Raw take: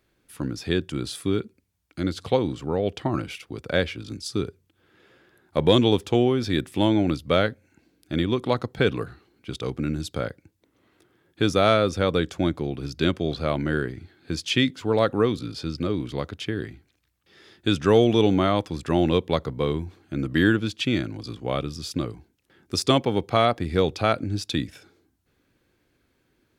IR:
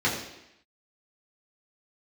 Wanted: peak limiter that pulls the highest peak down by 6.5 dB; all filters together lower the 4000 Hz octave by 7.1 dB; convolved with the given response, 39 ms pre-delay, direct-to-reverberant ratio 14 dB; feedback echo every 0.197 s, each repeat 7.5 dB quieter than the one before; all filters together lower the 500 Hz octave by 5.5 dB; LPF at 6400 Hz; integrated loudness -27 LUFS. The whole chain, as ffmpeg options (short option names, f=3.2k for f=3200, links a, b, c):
-filter_complex "[0:a]lowpass=6.4k,equalizer=f=500:t=o:g=-7,equalizer=f=4k:t=o:g=-8.5,alimiter=limit=-14.5dB:level=0:latency=1,aecho=1:1:197|394|591|788|985:0.422|0.177|0.0744|0.0312|0.0131,asplit=2[a][b];[1:a]atrim=start_sample=2205,adelay=39[c];[b][c]afir=irnorm=-1:irlink=0,volume=-27.5dB[d];[a][d]amix=inputs=2:normalize=0,volume=1.5dB"